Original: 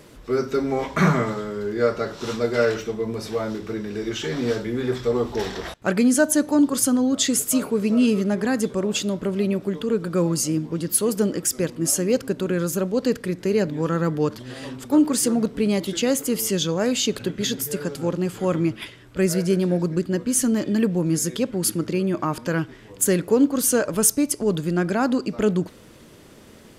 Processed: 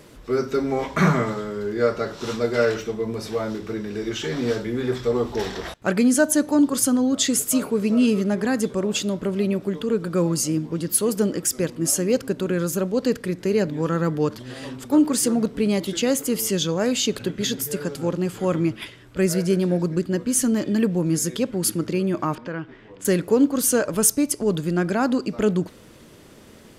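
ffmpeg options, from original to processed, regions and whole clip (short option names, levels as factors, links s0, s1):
-filter_complex "[0:a]asettb=1/sr,asplit=3[s0][s1][s2];[s0]atrim=end=22.354[s3];[s1]atrim=start=22.35:end=23.05,asetpts=PTS-STARTPTS,afade=t=in:d=0.004:c=qsin,afade=t=out:st=0.696:d=0.004:c=qsin,lowpass=2900,equalizer=f=64:w=0.79:g=-9.5,acompressor=threshold=0.0158:ratio=1.5:attack=3.2:release=140:knee=1:detection=peak[s4];[s2]atrim=start=23.046[s5];[s3][s4]acrossfade=d=0.004:c1=hsin:c2=qsin[s6];[s6][s5]acrossfade=d=0.004:c1=qsin:c2=hsin"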